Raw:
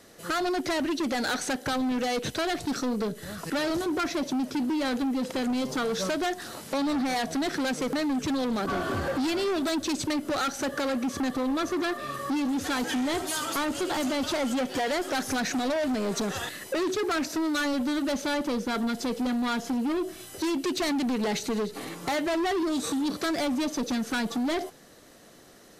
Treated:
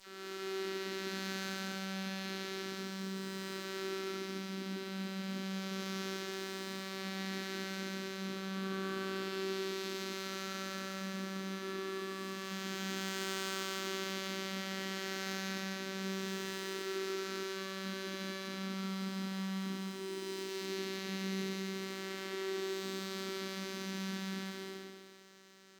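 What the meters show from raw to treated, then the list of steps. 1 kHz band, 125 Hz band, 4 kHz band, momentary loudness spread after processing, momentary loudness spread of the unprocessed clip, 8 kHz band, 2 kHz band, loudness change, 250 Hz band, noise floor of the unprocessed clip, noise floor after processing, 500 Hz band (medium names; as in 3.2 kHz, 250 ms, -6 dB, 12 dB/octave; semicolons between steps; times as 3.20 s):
-14.0 dB, -2.0 dB, -7.0 dB, 3 LU, 3 LU, -10.0 dB, -8.5 dB, -11.0 dB, -14.0 dB, -48 dBFS, -45 dBFS, -10.5 dB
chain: spectral blur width 597 ms; high-pass 130 Hz; high-order bell 740 Hz -13 dB 1.1 oct; phase dispersion lows, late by 68 ms, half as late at 2 kHz; on a send: thinning echo 67 ms, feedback 80%, level -12 dB; on the sum: robot voice 192 Hz; dynamic bell 7.9 kHz, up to +3 dB, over -52 dBFS, Q 0.76; sliding maximum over 3 samples; trim -4.5 dB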